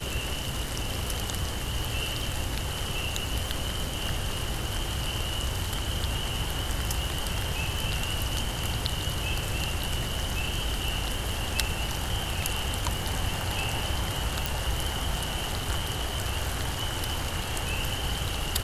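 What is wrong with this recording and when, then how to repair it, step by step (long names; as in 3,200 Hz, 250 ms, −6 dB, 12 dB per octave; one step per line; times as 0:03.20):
surface crackle 49 per second −37 dBFS
0:14.46: click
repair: click removal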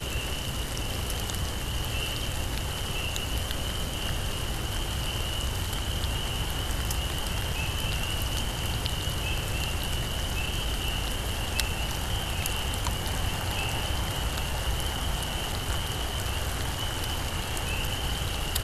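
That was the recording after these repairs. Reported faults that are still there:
none of them is left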